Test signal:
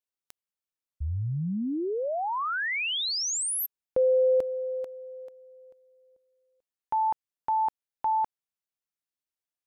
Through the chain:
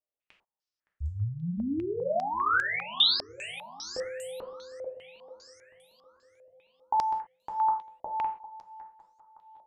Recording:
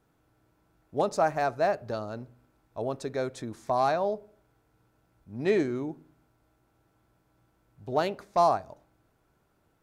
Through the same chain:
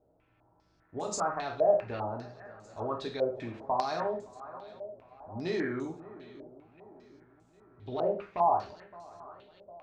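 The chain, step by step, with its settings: limiter -22 dBFS; on a send: swung echo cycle 0.755 s, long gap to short 3:1, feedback 46%, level -18 dB; on the sum: dynamic EQ 590 Hz, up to -4 dB, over -46 dBFS, Q 3.5; non-linear reverb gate 0.15 s falling, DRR 0 dB; stepped low-pass 5 Hz 610–7300 Hz; gain -5 dB

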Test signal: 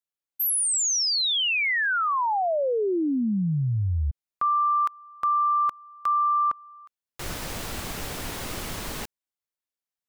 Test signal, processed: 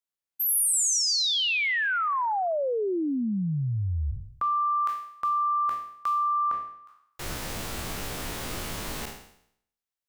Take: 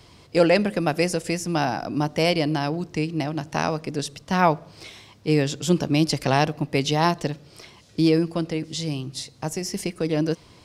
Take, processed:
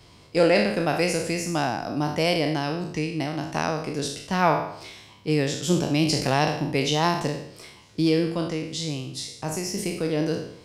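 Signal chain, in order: spectral trails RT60 0.68 s; gain -3 dB

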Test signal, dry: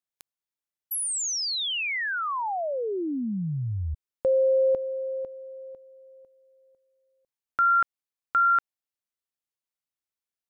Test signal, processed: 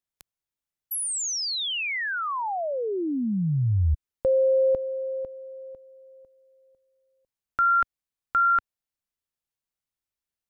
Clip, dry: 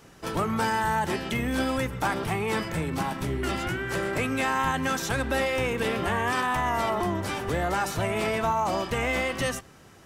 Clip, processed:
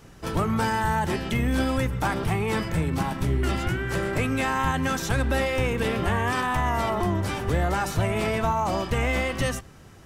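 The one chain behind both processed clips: low shelf 130 Hz +11.5 dB

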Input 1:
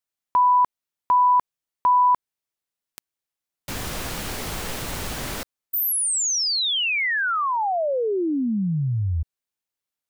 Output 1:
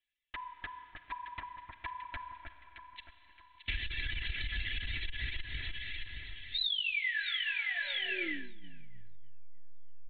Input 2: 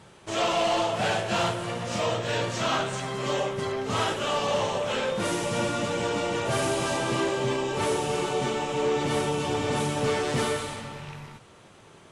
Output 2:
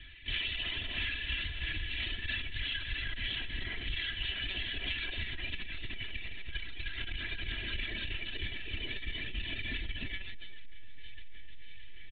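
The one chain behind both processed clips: EQ curve 170 Hz 0 dB, 1200 Hz -27 dB, 1700 Hz +13 dB; monotone LPC vocoder at 8 kHz 190 Hz; low shelf 140 Hz +7 dB; reverb removal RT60 1.9 s; echo with dull and thin repeats by turns 0.31 s, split 1600 Hz, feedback 61%, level -3.5 dB; Schroeder reverb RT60 3.9 s, combs from 32 ms, DRR 10 dB; compressor 12:1, threshold -27 dBFS; comb 3 ms, depth 61%; core saturation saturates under 48 Hz; gain -6 dB

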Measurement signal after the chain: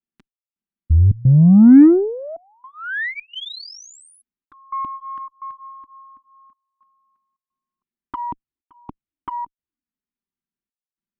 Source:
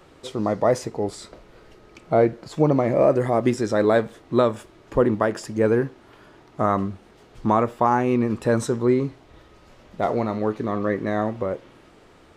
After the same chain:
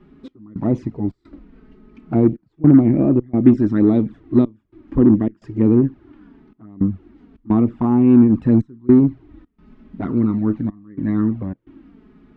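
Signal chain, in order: LPF 2400 Hz 12 dB/oct; envelope flanger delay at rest 5.1 ms, full sweep at -15.5 dBFS; step gate "xx..xxxx.xxxxxx" 108 bpm -24 dB; resonant low shelf 390 Hz +10 dB, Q 3; added harmonics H 5 -37 dB, 8 -34 dB, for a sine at 2 dBFS; gain -3 dB

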